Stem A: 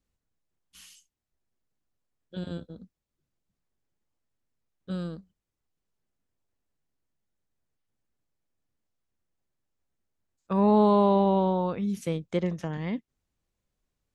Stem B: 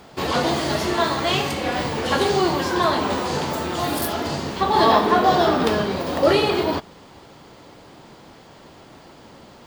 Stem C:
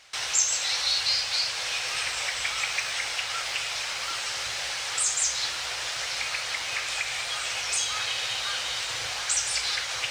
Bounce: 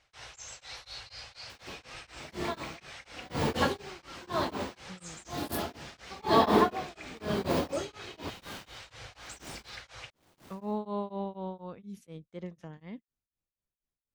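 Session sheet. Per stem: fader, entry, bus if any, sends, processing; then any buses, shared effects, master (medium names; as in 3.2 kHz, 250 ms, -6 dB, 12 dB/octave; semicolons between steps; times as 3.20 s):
-11.5 dB, 0.00 s, no send, none
-1.5 dB, 1.50 s, no send, bass shelf 440 Hz +4.5 dB; bit crusher 7-bit; logarithmic tremolo 1 Hz, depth 29 dB; auto duck -10 dB, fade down 1.15 s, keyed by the first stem
-11.0 dB, 0.00 s, no send, tilt EQ -3 dB/octave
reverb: none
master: tremolo of two beating tones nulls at 4.1 Hz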